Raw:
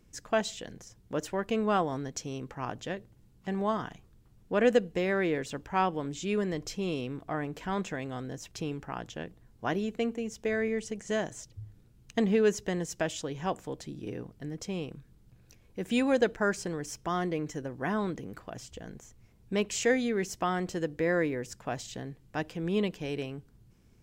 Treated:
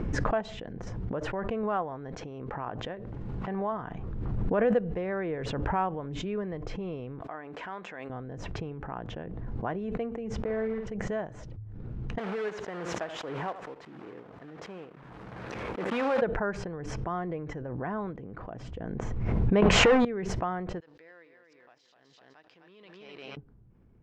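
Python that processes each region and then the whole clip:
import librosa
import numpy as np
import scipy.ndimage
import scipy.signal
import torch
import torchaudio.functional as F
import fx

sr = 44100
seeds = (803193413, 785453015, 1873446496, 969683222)

y = fx.chain(x, sr, fx.low_shelf(hz=280.0, db=-6.5),
    fx.pre_swell(db_per_s=23.0), at=(1.63, 3.72))
y = fx.chain(y, sr, fx.highpass(hz=1300.0, slope=6),
    fx.high_shelf(hz=3500.0, db=5.5), at=(7.21, 8.1))
y = fx.chain(y, sr, fx.block_float(bits=3),
    fx.spacing_loss(db_at_10k=23),
    fx.doubler(ms=50.0, db=-4.0), at=(10.44, 10.87))
y = fx.chain(y, sr, fx.block_float(bits=3),
    fx.highpass(hz=790.0, slope=6),
    fx.echo_single(ms=79, db=-17.0), at=(12.18, 16.22))
y = fx.chain(y, sr, fx.hum_notches(base_hz=60, count=5),
    fx.leveller(passes=5),
    fx.env_flatten(amount_pct=100), at=(19.62, 20.05))
y = fx.chain(y, sr, fx.law_mismatch(coded='A'),
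    fx.bandpass_q(hz=4800.0, q=2.3),
    fx.echo_feedback(ms=253, feedback_pct=22, wet_db=-7.5), at=(20.8, 23.37))
y = scipy.signal.sosfilt(scipy.signal.butter(2, 1300.0, 'lowpass', fs=sr, output='sos'), y)
y = fx.dynamic_eq(y, sr, hz=280.0, q=1.3, threshold_db=-42.0, ratio=4.0, max_db=-7)
y = fx.pre_swell(y, sr, db_per_s=22.0)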